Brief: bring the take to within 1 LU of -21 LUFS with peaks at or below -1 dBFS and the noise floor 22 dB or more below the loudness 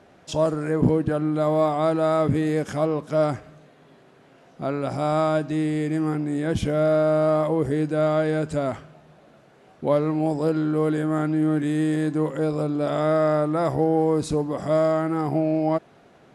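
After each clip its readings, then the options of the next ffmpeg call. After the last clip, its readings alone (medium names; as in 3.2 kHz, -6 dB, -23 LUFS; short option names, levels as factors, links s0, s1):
loudness -23.0 LUFS; peak level -8.0 dBFS; loudness target -21.0 LUFS
-> -af "volume=1.26"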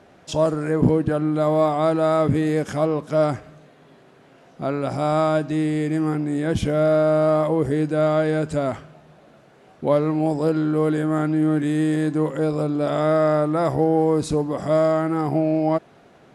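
loudness -21.0 LUFS; peak level -6.0 dBFS; noise floor -52 dBFS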